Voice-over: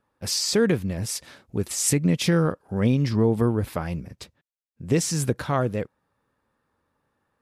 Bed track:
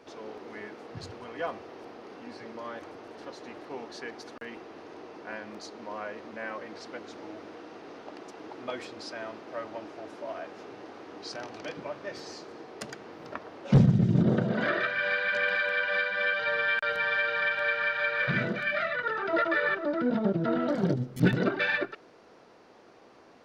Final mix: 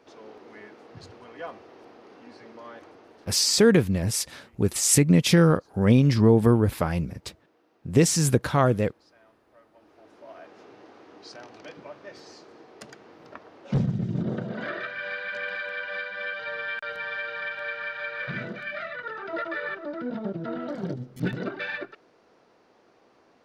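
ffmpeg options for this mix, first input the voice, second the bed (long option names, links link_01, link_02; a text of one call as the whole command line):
ffmpeg -i stem1.wav -i stem2.wav -filter_complex "[0:a]adelay=3050,volume=3dB[link_01];[1:a]volume=11.5dB,afade=type=out:start_time=2.79:duration=0.97:silence=0.149624,afade=type=in:start_time=9.73:duration=0.86:silence=0.16788[link_02];[link_01][link_02]amix=inputs=2:normalize=0" out.wav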